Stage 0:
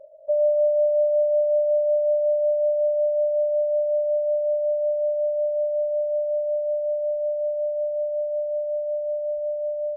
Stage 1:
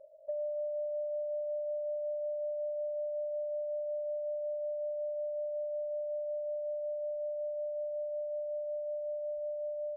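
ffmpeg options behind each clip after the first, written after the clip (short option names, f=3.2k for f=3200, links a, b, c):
-af "acompressor=threshold=-26dB:ratio=6,volume=-8.5dB"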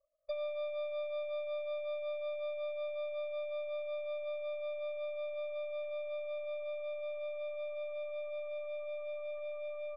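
-af "aeval=exprs='0.0355*(cos(1*acos(clip(val(0)/0.0355,-1,1)))-cos(1*PI/2))+0.00158*(cos(2*acos(clip(val(0)/0.0355,-1,1)))-cos(2*PI/2))+0.000398*(cos(3*acos(clip(val(0)/0.0355,-1,1)))-cos(3*PI/2))+0.00398*(cos(8*acos(clip(val(0)/0.0355,-1,1)))-cos(8*PI/2))':c=same,agate=range=-33dB:threshold=-29dB:ratio=3:detection=peak,volume=6dB"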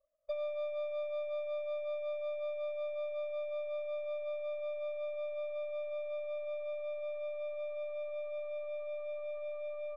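-af "adynamicsmooth=sensitivity=4:basefreq=2.9k,volume=1dB"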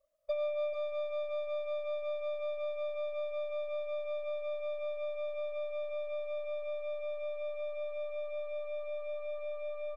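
-af "aecho=1:1:440:0.376,volume=3.5dB"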